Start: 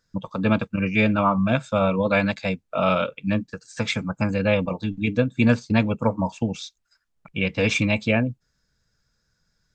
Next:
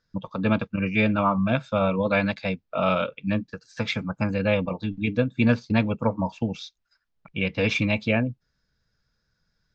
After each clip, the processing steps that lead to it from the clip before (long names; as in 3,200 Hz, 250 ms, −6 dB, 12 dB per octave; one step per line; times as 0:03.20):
low-pass filter 5,400 Hz 24 dB per octave
level −2 dB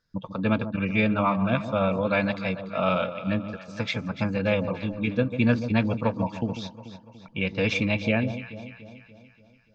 delay that swaps between a low-pass and a high-pass 145 ms, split 1,000 Hz, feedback 71%, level −10 dB
level −1.5 dB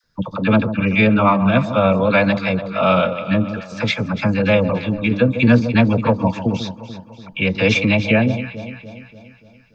all-pass dispersion lows, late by 42 ms, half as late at 790 Hz
level +9 dB